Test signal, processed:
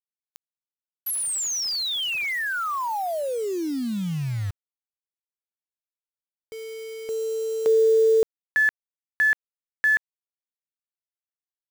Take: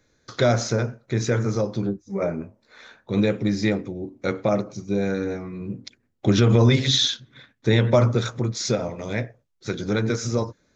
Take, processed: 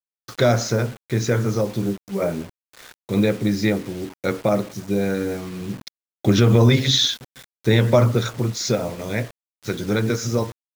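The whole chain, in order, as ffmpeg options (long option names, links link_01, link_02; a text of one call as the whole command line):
ffmpeg -i in.wav -af "acrusher=bits=6:mix=0:aa=0.000001,volume=2dB" out.wav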